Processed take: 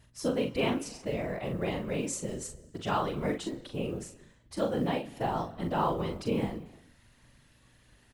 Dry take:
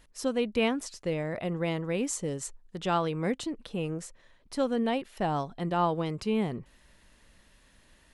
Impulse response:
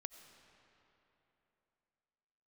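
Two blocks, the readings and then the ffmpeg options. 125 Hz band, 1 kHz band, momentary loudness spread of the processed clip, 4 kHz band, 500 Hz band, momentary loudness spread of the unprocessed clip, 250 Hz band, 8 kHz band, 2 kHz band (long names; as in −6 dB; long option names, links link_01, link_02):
−1.5 dB, −1.5 dB, 10 LU, −2.0 dB, −1.5 dB, 8 LU, −2.5 dB, −2.0 dB, −2.0 dB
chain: -filter_complex "[0:a]asplit=2[link_01][link_02];[1:a]atrim=start_sample=2205,afade=type=out:start_time=0.4:duration=0.01,atrim=end_sample=18081[link_03];[link_02][link_03]afir=irnorm=-1:irlink=0,volume=1.5dB[link_04];[link_01][link_04]amix=inputs=2:normalize=0,acrusher=bits=9:mode=log:mix=0:aa=0.000001,afftfilt=real='hypot(re,im)*cos(2*PI*random(0))':imag='hypot(re,im)*sin(2*PI*random(1))':win_size=512:overlap=0.75,aeval=exprs='val(0)+0.000708*(sin(2*PI*60*n/s)+sin(2*PI*2*60*n/s)/2+sin(2*PI*3*60*n/s)/3+sin(2*PI*4*60*n/s)/4+sin(2*PI*5*60*n/s)/5)':channel_layout=same,aecho=1:1:41|59:0.501|0.15,volume=-1.5dB"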